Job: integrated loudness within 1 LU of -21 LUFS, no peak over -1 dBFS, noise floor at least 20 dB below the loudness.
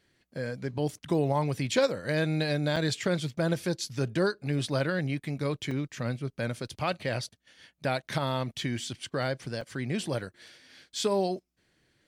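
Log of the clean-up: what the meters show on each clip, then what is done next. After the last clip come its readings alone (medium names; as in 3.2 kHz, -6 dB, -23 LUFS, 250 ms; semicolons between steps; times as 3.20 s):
dropouts 3; longest dropout 4.4 ms; loudness -30.5 LUFS; peak level -13.0 dBFS; loudness target -21.0 LUFS
-> interpolate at 2.76/5.71/9.61 s, 4.4 ms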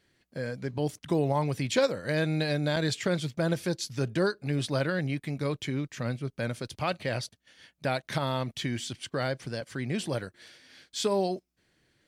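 dropouts 0; loudness -30.5 LUFS; peak level -13.0 dBFS; loudness target -21.0 LUFS
-> trim +9.5 dB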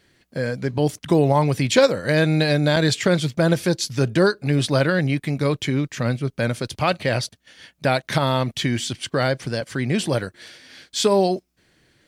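loudness -21.0 LUFS; peak level -3.5 dBFS; noise floor -68 dBFS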